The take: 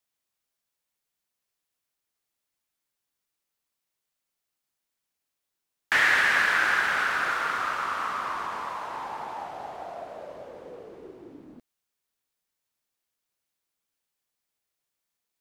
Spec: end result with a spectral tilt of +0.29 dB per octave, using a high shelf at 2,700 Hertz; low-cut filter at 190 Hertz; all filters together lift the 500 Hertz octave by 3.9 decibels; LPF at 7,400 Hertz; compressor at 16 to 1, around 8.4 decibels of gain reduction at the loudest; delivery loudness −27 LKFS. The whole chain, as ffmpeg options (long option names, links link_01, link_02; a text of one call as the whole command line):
ffmpeg -i in.wav -af "highpass=190,lowpass=7400,equalizer=frequency=500:width_type=o:gain=5.5,highshelf=frequency=2700:gain=-9,acompressor=threshold=-28dB:ratio=16,volume=6.5dB" out.wav